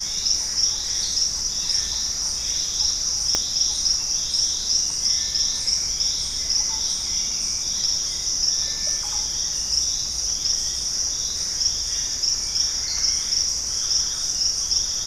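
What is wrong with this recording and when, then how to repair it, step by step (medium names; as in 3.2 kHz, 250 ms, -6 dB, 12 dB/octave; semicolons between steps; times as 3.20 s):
3.35 s: pop -6 dBFS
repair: de-click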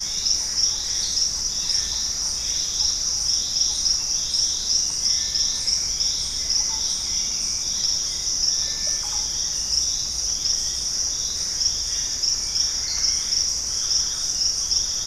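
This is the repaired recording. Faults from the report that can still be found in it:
3.35 s: pop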